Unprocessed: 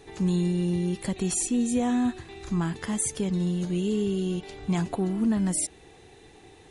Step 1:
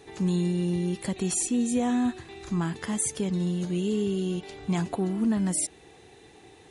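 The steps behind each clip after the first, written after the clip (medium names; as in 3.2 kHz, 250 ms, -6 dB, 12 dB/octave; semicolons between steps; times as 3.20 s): high-pass 90 Hz 6 dB/octave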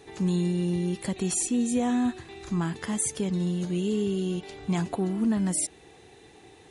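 no audible change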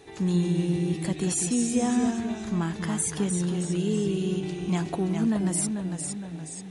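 ever faster or slower copies 126 ms, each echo -1 st, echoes 3, each echo -6 dB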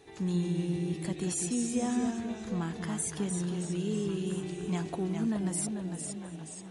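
repeats whose band climbs or falls 738 ms, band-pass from 490 Hz, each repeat 1.4 oct, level -8 dB; trim -6 dB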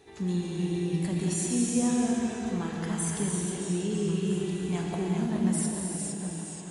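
reverberation, pre-delay 3 ms, DRR -1 dB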